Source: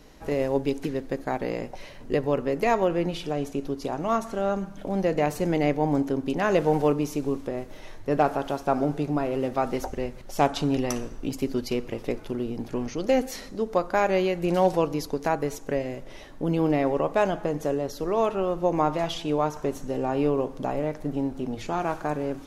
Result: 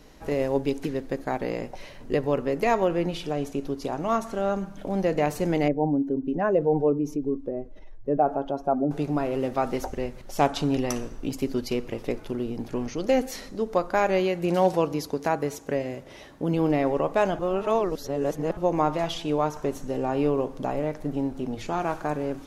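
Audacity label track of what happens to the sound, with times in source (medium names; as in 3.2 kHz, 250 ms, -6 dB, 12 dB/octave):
5.680000	8.910000	spectral contrast enhancement exponent 1.7
14.200000	16.540000	high-pass 60 Hz
17.390000	18.570000	reverse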